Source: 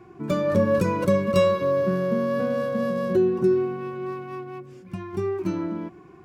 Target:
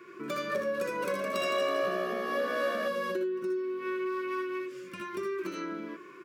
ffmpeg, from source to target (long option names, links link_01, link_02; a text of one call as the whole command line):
ffmpeg -i in.wav -filter_complex "[0:a]asuperstop=centerf=790:order=4:qfactor=1.3,aecho=1:1:62|76:0.631|0.668,acompressor=threshold=-29dB:ratio=6,highpass=580,equalizer=frequency=6800:width=0.58:gain=-3.5,asettb=1/sr,asplit=3[link_01][link_02][link_03];[link_01]atrim=end=0.884[link_04];[link_02]atrim=start=0.88:end=2.88,asetpts=PTS-STARTPTS,afade=type=in:duration=0.004:curve=qsin,afade=type=out:start_time=1.996:duration=0.004:curve=qsin,asplit=6[link_05][link_06][link_07][link_08][link_09][link_10];[link_06]adelay=163,afreqshift=64,volume=-5.5dB[link_11];[link_07]adelay=326,afreqshift=128,volume=-12.6dB[link_12];[link_08]adelay=489,afreqshift=192,volume=-19.8dB[link_13];[link_09]adelay=652,afreqshift=256,volume=-26.9dB[link_14];[link_10]adelay=815,afreqshift=320,volume=-34dB[link_15];[link_05][link_11][link_12][link_13][link_14][link_15]amix=inputs=6:normalize=0,atrim=end_sample=88200[link_16];[link_03]atrim=start=2.876[link_17];[link_04][link_16]acrossfade=duration=0.004:curve1=hsin:curve2=qsin[link_18];[link_18][link_17]acrossfade=duration=0.004:curve1=qsin:curve2=hsin,volume=6.5dB" out.wav